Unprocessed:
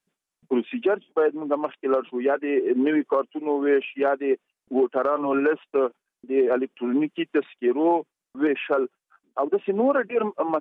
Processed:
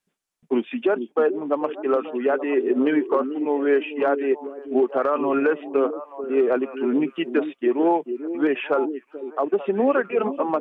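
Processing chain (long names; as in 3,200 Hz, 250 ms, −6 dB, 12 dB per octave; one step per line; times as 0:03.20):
echo through a band-pass that steps 440 ms, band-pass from 300 Hz, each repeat 1.4 octaves, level −7.5 dB
level +1 dB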